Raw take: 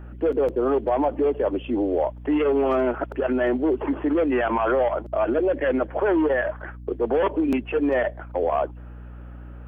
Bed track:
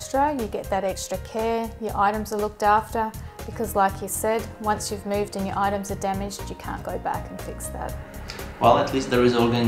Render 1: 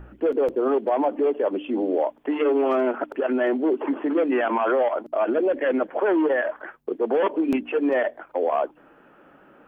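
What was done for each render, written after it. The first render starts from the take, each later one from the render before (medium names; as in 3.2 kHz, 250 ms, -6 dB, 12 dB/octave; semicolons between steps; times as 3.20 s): de-hum 60 Hz, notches 5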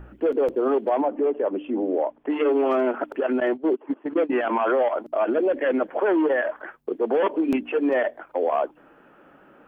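1.01–2.30 s: distance through air 370 m; 3.40–4.47 s: gate -23 dBFS, range -19 dB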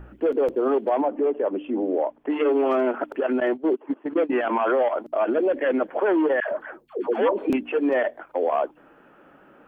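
6.40–7.50 s: phase dispersion lows, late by 132 ms, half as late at 550 Hz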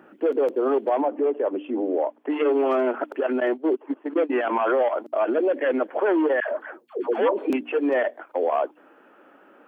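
high-pass 240 Hz 24 dB/octave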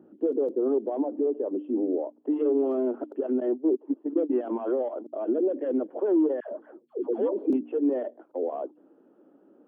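FFT filter 340 Hz 0 dB, 2.3 kHz -29 dB, 3.8 kHz -18 dB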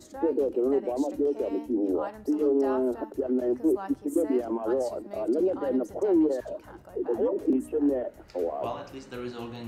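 add bed track -18 dB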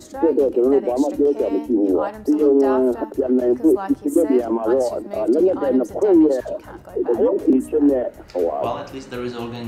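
trim +9 dB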